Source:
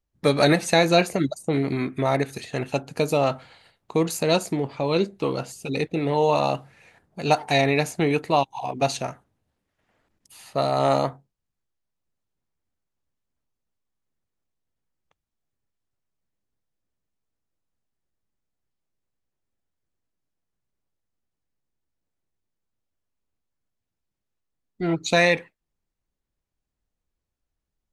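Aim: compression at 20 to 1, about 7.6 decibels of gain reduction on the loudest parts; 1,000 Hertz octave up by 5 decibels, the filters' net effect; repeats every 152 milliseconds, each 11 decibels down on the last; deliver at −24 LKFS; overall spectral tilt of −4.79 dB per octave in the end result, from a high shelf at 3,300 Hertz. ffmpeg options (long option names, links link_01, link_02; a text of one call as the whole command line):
ffmpeg -i in.wav -af "equalizer=frequency=1000:width_type=o:gain=7.5,highshelf=frequency=3300:gain=-3.5,acompressor=threshold=-17dB:ratio=20,aecho=1:1:152|304|456:0.282|0.0789|0.0221,volume=1dB" out.wav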